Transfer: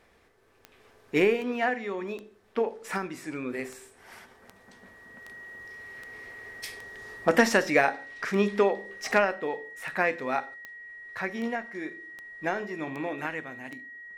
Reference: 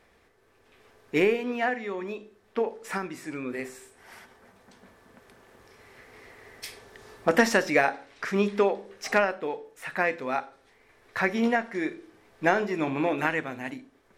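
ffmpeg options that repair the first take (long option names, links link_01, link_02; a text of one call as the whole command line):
ffmpeg -i in.wav -af "adeclick=threshold=4,bandreject=frequency=1900:width=30,asetnsamples=nb_out_samples=441:pad=0,asendcmd='10.54 volume volume 7dB',volume=0dB" out.wav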